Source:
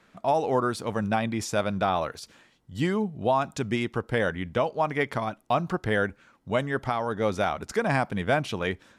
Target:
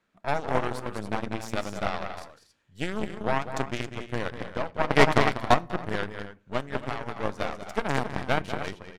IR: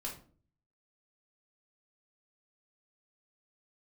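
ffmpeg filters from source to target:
-filter_complex "[0:a]aecho=1:1:195.3|274.1:0.501|0.398,asplit=3[link_01][link_02][link_03];[link_01]afade=type=out:start_time=4.89:duration=0.02[link_04];[link_02]acontrast=85,afade=type=in:start_time=4.89:duration=0.02,afade=type=out:start_time=5.53:duration=0.02[link_05];[link_03]afade=type=in:start_time=5.53:duration=0.02[link_06];[link_04][link_05][link_06]amix=inputs=3:normalize=0,aeval=exprs='0.531*(cos(1*acos(clip(val(0)/0.531,-1,1)))-cos(1*PI/2))+0.119*(cos(4*acos(clip(val(0)/0.531,-1,1)))-cos(4*PI/2))+0.0596*(cos(7*acos(clip(val(0)/0.531,-1,1)))-cos(7*PI/2))':channel_layout=same,asplit=2[link_07][link_08];[1:a]atrim=start_sample=2205[link_09];[link_08][link_09]afir=irnorm=-1:irlink=0,volume=-15.5dB[link_10];[link_07][link_10]amix=inputs=2:normalize=0,volume=-1.5dB"

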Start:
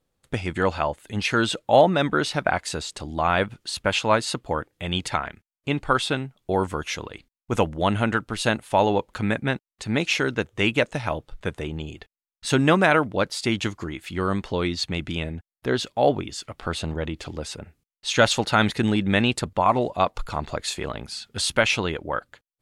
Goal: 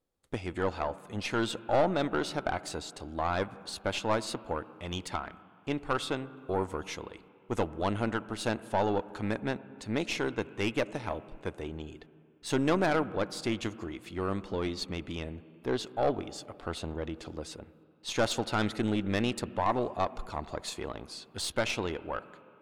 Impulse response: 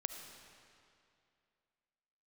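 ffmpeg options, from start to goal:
-filter_complex "[0:a]aeval=exprs='(tanh(5.01*val(0)+0.55)-tanh(0.55))/5.01':channel_layout=same,asplit=2[link_01][link_02];[link_02]highpass=frequency=140:width=0.5412,highpass=frequency=140:width=1.3066,equalizer=frequency=320:width_type=q:width=4:gain=3,equalizer=frequency=610:width_type=q:width=4:gain=-4,equalizer=frequency=1900:width_type=q:width=4:gain=-7,lowpass=frequency=2900:width=0.5412,lowpass=frequency=2900:width=1.3066[link_03];[1:a]atrim=start_sample=2205,highshelf=frequency=2500:gain=-9[link_04];[link_03][link_04]afir=irnorm=-1:irlink=0,volume=-5dB[link_05];[link_01][link_05]amix=inputs=2:normalize=0,volume=-7dB"

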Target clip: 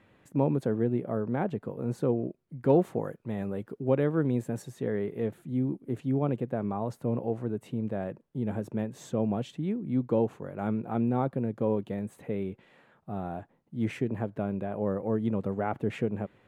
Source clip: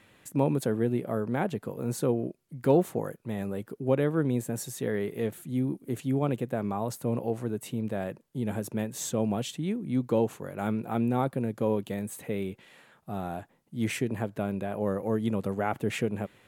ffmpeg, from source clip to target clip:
ffmpeg -i in.wav -af "asetnsamples=nb_out_samples=441:pad=0,asendcmd='2.7 lowpass f 2100;4.62 lowpass f 1200',lowpass=frequency=1200:poles=1" out.wav

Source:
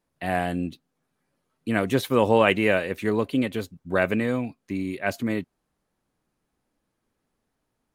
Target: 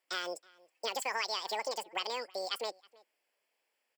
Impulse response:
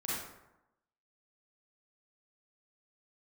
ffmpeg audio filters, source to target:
-filter_complex "[0:a]highpass=420,aecho=1:1:0.8:0.55,acompressor=threshold=-31dB:ratio=5,asplit=2[link_01][link_02];[link_02]adelay=641.4,volume=-24dB,highshelf=frequency=4000:gain=-14.4[link_03];[link_01][link_03]amix=inputs=2:normalize=0,asetrate=88200,aresample=44100,volume=-1dB"

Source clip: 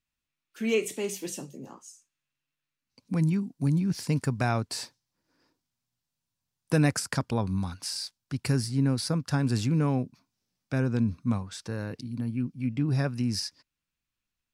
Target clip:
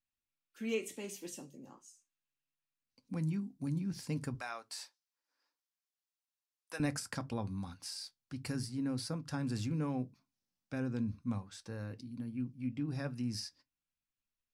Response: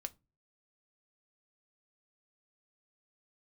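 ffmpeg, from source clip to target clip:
-filter_complex "[0:a]asettb=1/sr,asplit=3[link_01][link_02][link_03];[link_01]atrim=end=4.344[link_04];[link_02]atrim=start=4.34:end=6.8,asetpts=PTS-STARTPTS,afade=type=in:duration=0.004:curve=qsin,afade=type=out:start_time=2.456:duration=0.004:curve=qsin,highpass=820[link_05];[link_03]atrim=start=6.796[link_06];[link_04][link_05]acrossfade=duration=0.004:curve1=hsin:curve2=qsin[link_07];[link_07][link_06]acrossfade=duration=0.004:curve1=qsin:curve2=hsin[link_08];[1:a]atrim=start_sample=2205,afade=type=out:start_time=0.19:duration=0.01,atrim=end_sample=8820,asetrate=61740,aresample=44100[link_09];[link_08][link_09]afir=irnorm=-1:irlink=0,volume=-4dB"

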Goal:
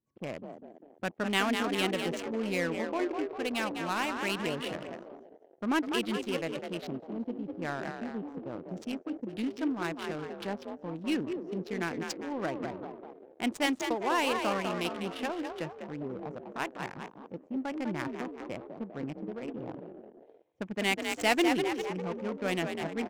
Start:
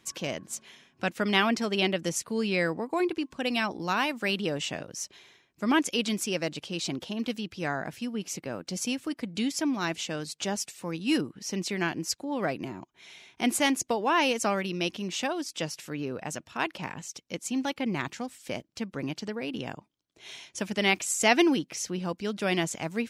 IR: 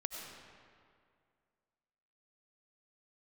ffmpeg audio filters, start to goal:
-filter_complex "[0:a]asplit=9[link_01][link_02][link_03][link_04][link_05][link_06][link_07][link_08][link_09];[link_02]adelay=200,afreqshift=47,volume=-5.5dB[link_10];[link_03]adelay=400,afreqshift=94,volume=-9.9dB[link_11];[link_04]adelay=600,afreqshift=141,volume=-14.4dB[link_12];[link_05]adelay=800,afreqshift=188,volume=-18.8dB[link_13];[link_06]adelay=1000,afreqshift=235,volume=-23.2dB[link_14];[link_07]adelay=1200,afreqshift=282,volume=-27.7dB[link_15];[link_08]adelay=1400,afreqshift=329,volume=-32.1dB[link_16];[link_09]adelay=1600,afreqshift=376,volume=-36.6dB[link_17];[link_01][link_10][link_11][link_12][link_13][link_14][link_15][link_16][link_17]amix=inputs=9:normalize=0,afwtdn=0.0126,adynamicsmooth=sensitivity=5:basefreq=640,volume=-4.5dB"

